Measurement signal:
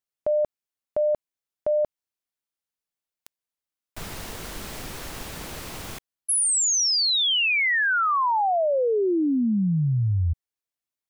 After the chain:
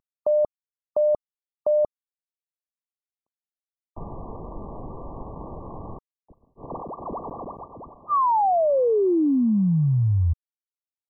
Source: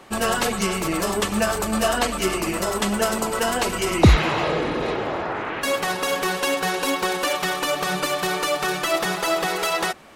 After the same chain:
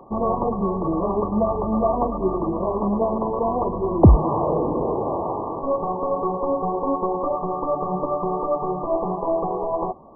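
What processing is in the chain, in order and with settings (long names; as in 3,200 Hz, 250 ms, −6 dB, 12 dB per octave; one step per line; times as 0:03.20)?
variable-slope delta modulation 32 kbit/s
linear-phase brick-wall low-pass 1,200 Hz
level +2.5 dB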